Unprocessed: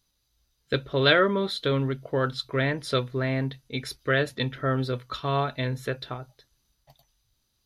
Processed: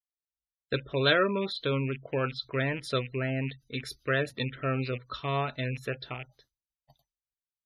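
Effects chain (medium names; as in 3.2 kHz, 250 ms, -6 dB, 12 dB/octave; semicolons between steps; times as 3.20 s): rattle on loud lows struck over -36 dBFS, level -24 dBFS; spectral gate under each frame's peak -25 dB strong; expander -53 dBFS; trim -4 dB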